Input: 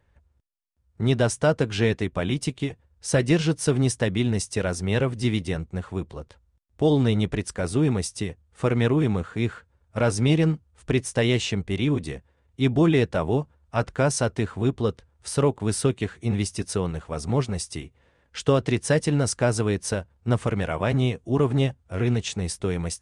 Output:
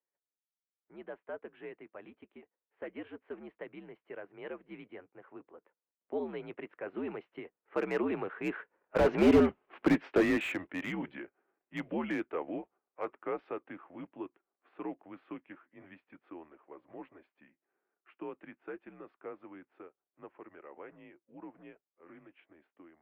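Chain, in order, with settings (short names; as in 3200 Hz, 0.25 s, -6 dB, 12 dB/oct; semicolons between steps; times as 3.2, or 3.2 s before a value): block floating point 7-bit; Doppler pass-by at 9.51, 35 m/s, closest 7.6 m; low-pass opened by the level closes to 2000 Hz, open at -30.5 dBFS; AGC gain up to 3.5 dB; in parallel at -7 dB: overloaded stage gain 25 dB; on the sum: mistuned SSB -79 Hz 380–2800 Hz; slew limiter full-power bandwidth 26 Hz; gain +5.5 dB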